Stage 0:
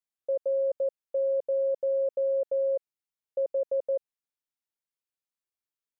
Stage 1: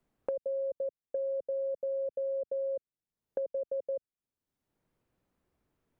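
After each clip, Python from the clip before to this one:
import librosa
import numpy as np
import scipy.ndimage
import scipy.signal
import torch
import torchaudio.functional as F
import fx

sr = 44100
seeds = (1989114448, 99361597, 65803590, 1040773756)

y = fx.tilt_shelf(x, sr, db=10.0, hz=630.0)
y = fx.band_squash(y, sr, depth_pct=100)
y = y * librosa.db_to_amplitude(-8.0)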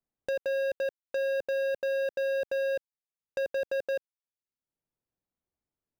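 y = fx.peak_eq(x, sr, hz=750.0, db=2.5, octaves=0.42)
y = fx.leveller(y, sr, passes=5)
y = y * librosa.db_to_amplitude(-6.0)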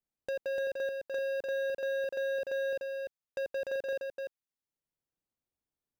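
y = x + 10.0 ** (-4.0 / 20.0) * np.pad(x, (int(296 * sr / 1000.0), 0))[:len(x)]
y = y * librosa.db_to_amplitude(-4.5)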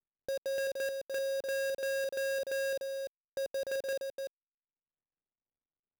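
y = fx.dead_time(x, sr, dead_ms=0.15)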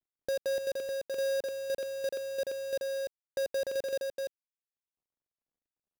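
y = scipy.ndimage.median_filter(x, 41, mode='constant')
y = y * librosa.db_to_amplitude(4.0)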